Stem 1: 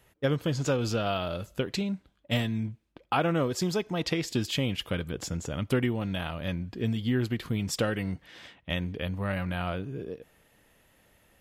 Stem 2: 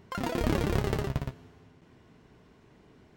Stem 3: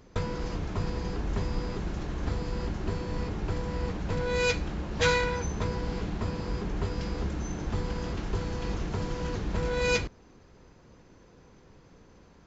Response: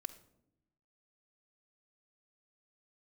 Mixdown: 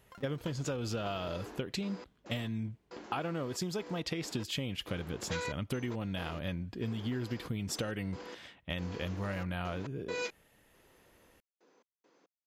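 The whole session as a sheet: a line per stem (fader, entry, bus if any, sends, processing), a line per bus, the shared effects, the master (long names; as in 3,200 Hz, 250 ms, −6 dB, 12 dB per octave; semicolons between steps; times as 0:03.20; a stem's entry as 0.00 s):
−3.0 dB, 0.00 s, no send, no processing
−16.5 dB, 0.00 s, no send, downward compressor, threshold −32 dBFS, peak gain reduction 11 dB
−8.0 dB, 0.30 s, no send, gate pattern "x..xxx.x." 69 BPM −60 dB; high-pass filter 280 Hz 24 dB per octave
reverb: not used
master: downward compressor, threshold −32 dBFS, peak gain reduction 8.5 dB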